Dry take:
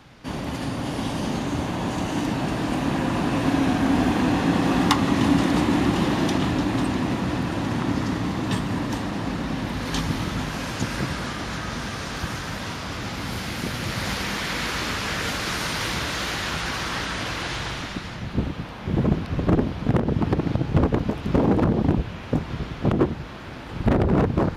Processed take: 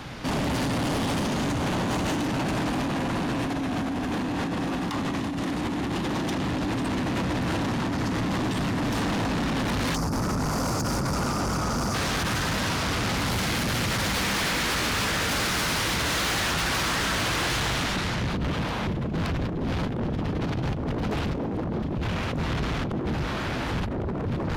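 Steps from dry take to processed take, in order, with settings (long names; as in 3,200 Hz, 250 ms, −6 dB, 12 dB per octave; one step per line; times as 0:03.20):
time-frequency box erased 0:09.96–0:11.94, 1,500–4,500 Hz
compressor whose output falls as the input rises −28 dBFS, ratio −1
soft clipping −32 dBFS, distortion −7 dB
level +8 dB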